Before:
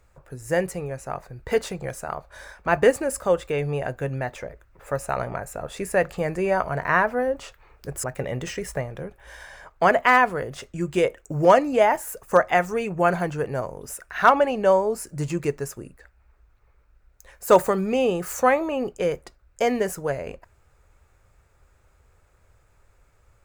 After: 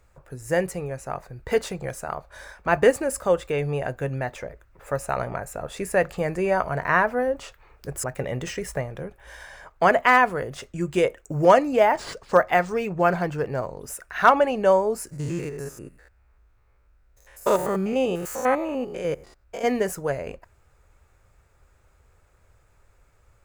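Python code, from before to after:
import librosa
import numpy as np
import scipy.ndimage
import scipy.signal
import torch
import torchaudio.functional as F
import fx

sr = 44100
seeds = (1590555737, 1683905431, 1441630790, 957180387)

y = fx.resample_linear(x, sr, factor=3, at=(11.76, 13.8))
y = fx.spec_steps(y, sr, hold_ms=100, at=(15.11, 19.64), fade=0.02)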